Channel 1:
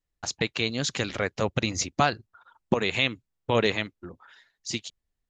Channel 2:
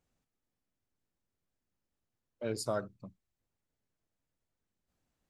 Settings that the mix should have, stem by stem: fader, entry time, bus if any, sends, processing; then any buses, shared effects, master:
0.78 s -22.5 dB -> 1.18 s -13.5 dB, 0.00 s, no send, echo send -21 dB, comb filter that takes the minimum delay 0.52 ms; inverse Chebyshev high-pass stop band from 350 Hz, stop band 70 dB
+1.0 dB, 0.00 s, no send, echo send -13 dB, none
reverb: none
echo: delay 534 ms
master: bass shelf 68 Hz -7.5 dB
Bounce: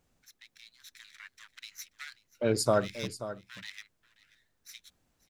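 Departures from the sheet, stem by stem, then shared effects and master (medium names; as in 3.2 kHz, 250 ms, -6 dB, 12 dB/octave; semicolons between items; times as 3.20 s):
stem 2 +1.0 dB -> +8.5 dB; master: missing bass shelf 68 Hz -7.5 dB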